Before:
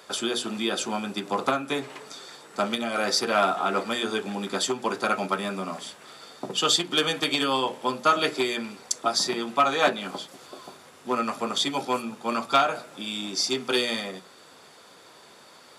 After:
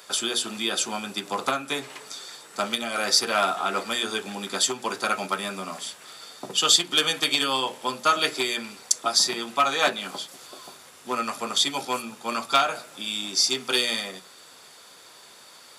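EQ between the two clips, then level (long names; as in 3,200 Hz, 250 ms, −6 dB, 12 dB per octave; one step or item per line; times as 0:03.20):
spectral tilt +2.5 dB per octave
parametric band 81 Hz +7.5 dB 1.9 octaves
−1.0 dB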